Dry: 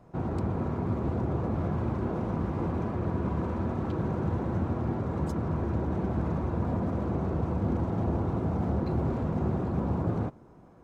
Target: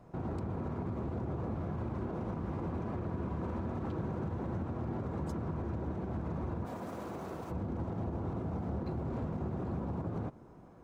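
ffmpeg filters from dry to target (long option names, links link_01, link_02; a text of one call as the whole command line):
ffmpeg -i in.wav -filter_complex "[0:a]acompressor=threshold=-31dB:ratio=3,asplit=3[link_01][link_02][link_03];[link_01]afade=type=out:start_time=6.65:duration=0.02[link_04];[link_02]aemphasis=mode=production:type=riaa,afade=type=in:start_time=6.65:duration=0.02,afade=type=out:start_time=7.5:duration=0.02[link_05];[link_03]afade=type=in:start_time=7.5:duration=0.02[link_06];[link_04][link_05][link_06]amix=inputs=3:normalize=0,alimiter=level_in=3.5dB:limit=-24dB:level=0:latency=1:release=69,volume=-3.5dB,volume=-1dB" out.wav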